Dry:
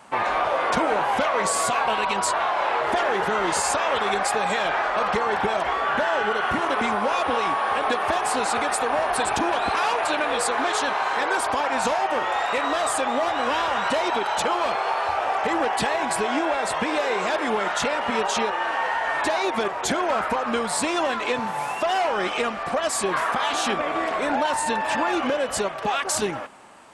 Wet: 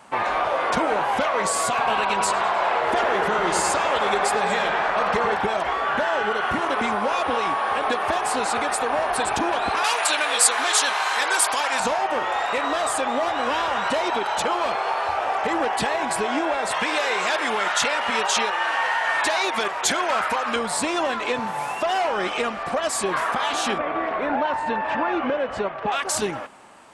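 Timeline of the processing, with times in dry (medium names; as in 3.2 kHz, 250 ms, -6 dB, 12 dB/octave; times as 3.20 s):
1.67–5.34 s: feedback echo behind a low-pass 102 ms, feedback 64%, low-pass 3.3 kHz, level -6 dB
9.84–11.80 s: tilt EQ +4 dB/octave
16.71–20.56 s: tilt shelf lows -6 dB, about 800 Hz
23.78–25.92 s: low-pass 2.4 kHz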